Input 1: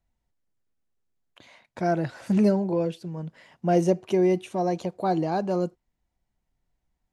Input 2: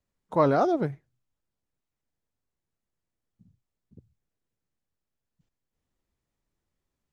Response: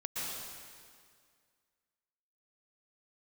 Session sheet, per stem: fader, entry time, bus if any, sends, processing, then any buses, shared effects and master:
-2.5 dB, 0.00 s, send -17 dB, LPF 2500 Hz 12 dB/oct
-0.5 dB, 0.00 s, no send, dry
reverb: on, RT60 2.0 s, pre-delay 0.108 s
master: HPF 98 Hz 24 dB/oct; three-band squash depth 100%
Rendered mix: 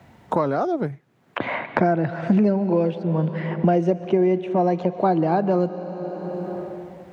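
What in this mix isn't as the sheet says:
stem 1 -2.5 dB -> +4.0 dB; stem 2 -0.5 dB -> -10.5 dB

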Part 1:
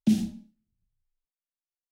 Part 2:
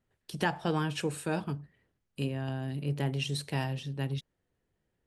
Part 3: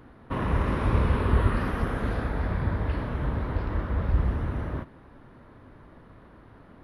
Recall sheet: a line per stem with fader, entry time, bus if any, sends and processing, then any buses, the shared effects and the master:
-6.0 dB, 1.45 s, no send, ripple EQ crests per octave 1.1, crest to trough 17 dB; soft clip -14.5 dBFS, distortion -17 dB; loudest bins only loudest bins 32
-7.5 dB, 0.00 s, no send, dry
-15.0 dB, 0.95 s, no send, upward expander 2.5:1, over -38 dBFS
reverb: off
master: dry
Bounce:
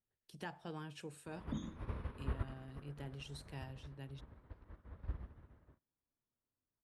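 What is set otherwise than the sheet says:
stem 1 -6.0 dB -> -15.0 dB; stem 2 -7.5 dB -> -16.5 dB

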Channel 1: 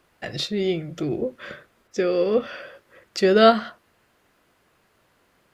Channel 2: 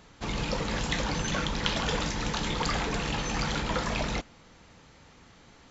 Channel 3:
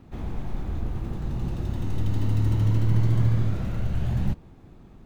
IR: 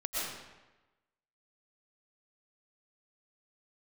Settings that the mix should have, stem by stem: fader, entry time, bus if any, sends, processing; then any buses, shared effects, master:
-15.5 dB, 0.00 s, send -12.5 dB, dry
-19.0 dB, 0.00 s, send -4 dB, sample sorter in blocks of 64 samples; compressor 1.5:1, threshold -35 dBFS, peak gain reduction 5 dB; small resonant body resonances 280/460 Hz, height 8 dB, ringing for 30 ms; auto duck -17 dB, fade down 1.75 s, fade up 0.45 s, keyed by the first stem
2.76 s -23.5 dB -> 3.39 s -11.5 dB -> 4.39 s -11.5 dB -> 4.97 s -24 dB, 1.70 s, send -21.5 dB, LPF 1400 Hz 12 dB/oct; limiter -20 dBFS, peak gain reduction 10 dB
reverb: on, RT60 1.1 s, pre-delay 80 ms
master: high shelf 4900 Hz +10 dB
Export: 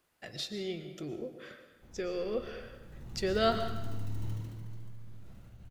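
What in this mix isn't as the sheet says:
stem 2: muted; stem 3: missing LPF 1400 Hz 12 dB/oct

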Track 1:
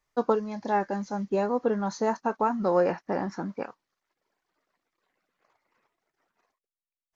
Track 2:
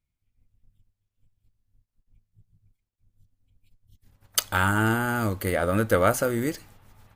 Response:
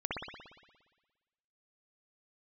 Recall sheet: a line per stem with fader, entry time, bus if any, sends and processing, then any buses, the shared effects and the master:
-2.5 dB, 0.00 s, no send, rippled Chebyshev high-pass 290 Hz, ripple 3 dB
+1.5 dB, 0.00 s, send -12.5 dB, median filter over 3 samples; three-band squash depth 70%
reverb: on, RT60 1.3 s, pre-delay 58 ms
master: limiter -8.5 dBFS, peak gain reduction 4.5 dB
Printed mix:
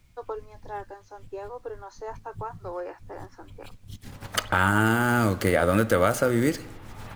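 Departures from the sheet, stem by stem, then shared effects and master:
stem 1 -2.5 dB -> -9.0 dB; stem 2: send -12.5 dB -> -22 dB

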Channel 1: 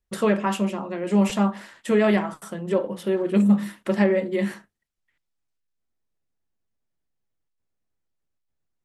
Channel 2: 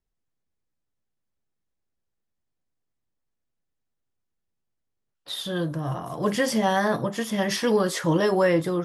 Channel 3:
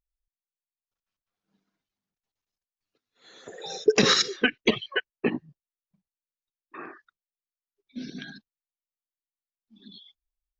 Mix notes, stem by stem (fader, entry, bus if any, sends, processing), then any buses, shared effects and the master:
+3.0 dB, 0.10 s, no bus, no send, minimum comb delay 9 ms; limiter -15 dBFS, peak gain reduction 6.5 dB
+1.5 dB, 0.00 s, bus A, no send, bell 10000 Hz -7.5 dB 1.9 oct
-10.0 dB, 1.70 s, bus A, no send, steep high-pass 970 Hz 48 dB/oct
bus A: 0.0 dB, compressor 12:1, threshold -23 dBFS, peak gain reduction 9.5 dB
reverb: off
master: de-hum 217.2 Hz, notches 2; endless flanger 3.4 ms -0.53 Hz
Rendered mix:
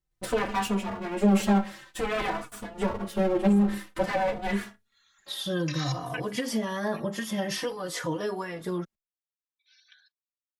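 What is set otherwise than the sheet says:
stem 2: missing bell 10000 Hz -7.5 dB 1.9 oct; master: missing de-hum 217.2 Hz, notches 2

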